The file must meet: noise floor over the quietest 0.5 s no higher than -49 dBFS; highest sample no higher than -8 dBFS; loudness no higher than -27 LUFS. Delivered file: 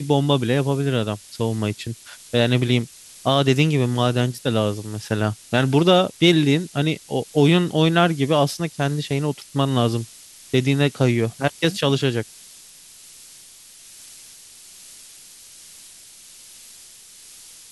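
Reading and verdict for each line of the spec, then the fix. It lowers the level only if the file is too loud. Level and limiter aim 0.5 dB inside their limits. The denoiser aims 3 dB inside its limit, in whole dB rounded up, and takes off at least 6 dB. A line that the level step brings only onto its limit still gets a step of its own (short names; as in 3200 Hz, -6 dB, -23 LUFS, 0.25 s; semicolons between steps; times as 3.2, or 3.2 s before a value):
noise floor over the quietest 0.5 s -46 dBFS: fail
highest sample -4.5 dBFS: fail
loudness -20.5 LUFS: fail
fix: gain -7 dB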